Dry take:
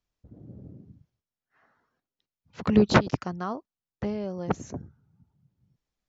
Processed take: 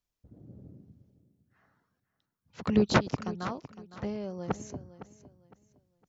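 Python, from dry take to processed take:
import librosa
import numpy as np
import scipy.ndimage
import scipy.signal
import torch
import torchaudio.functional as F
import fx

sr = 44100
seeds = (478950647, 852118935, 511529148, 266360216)

p1 = fx.high_shelf(x, sr, hz=5900.0, db=7.0)
p2 = p1 + fx.echo_feedback(p1, sr, ms=509, feedback_pct=28, wet_db=-15.0, dry=0)
y = p2 * 10.0 ** (-4.5 / 20.0)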